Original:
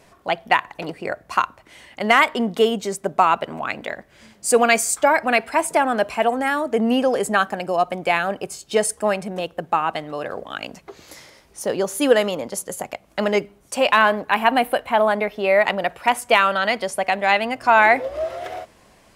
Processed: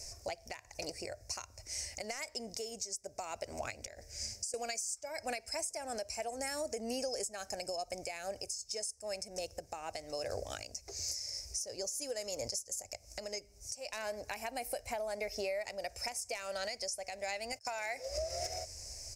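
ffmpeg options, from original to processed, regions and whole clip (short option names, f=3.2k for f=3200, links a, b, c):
-filter_complex "[0:a]asettb=1/sr,asplit=3[a][b][c];[a]atrim=end=3.854[d];[b]atrim=start=3.85:end=4.54,asetpts=PTS-STARTPTS,afade=t=in:d=0.004:c=qsin,afade=t=out:st=0.686:d=0.004:c=qsin,bandreject=f=1.1k:w=7.7,bandreject=f=152.6:t=h:w=4,bandreject=f=305.2:t=h:w=4,bandreject=f=457.8:t=h:w=4,acompressor=threshold=-35dB:ratio=12:attack=3.2:release=140:knee=1:detection=peak[e];[c]atrim=start=4.536[f];[d][e]acrossfade=d=0.004:c1=hsin:c2=qsin[g];[g][f]acrossfade=d=0.004:c1=qsin:c2=hsin,asettb=1/sr,asplit=3[h][i][j];[h]atrim=end=17.524[k];[i]atrim=start=17.52:end=18.18,asetpts=PTS-STARTPTS,afade=t=in:d=0.004:c=qsin,afade=t=out:st=0.656:d=0.004:c=qsin,agate=range=-29dB:threshold=-35dB:ratio=16:release=100:detection=peak,lowshelf=f=430:g=-10.5[l];[j]atrim=start=18.176[m];[k][l]acrossfade=d=0.004:c1=hsin:c2=qsin[n];[n][m]acrossfade=d=0.004:c1=qsin:c2=hsin,firequalizer=gain_entry='entry(100,0);entry(150,-25);entry(590,-12);entry(1100,-28);entry(2300,-12);entry(3300,-24);entry(5200,12);entry(11000,-4)':delay=0.05:min_phase=1,acompressor=threshold=-41dB:ratio=16,alimiter=level_in=11.5dB:limit=-24dB:level=0:latency=1:release=424,volume=-11.5dB,volume=9dB"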